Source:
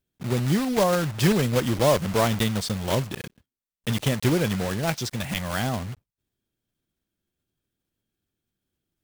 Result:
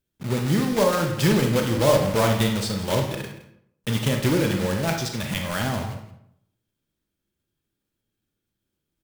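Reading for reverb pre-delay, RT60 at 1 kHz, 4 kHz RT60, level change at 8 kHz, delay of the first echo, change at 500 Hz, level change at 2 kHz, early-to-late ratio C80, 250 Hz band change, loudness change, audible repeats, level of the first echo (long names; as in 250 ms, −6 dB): 30 ms, 0.70 s, 0.50 s, +1.0 dB, 167 ms, +2.0 dB, +1.5 dB, 8.5 dB, +1.5 dB, +1.5 dB, 1, −16.0 dB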